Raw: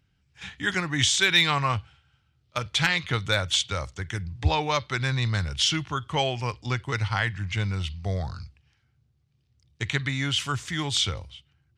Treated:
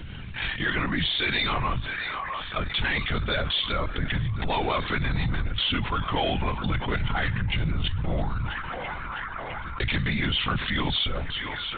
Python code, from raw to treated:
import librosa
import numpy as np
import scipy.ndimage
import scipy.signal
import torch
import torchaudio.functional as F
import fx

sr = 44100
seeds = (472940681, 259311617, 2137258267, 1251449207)

p1 = fx.rider(x, sr, range_db=4, speed_s=0.5)
p2 = 10.0 ** (-20.5 / 20.0) * np.tanh(p1 / 10.0 ** (-20.5 / 20.0))
p3 = p2 + fx.echo_banded(p2, sr, ms=659, feedback_pct=75, hz=1300.0, wet_db=-19.0, dry=0)
p4 = fx.lpc_vocoder(p3, sr, seeds[0], excitation='whisper', order=16)
p5 = fx.env_flatten(p4, sr, amount_pct=70)
y = p5 * 10.0 ** (-1.5 / 20.0)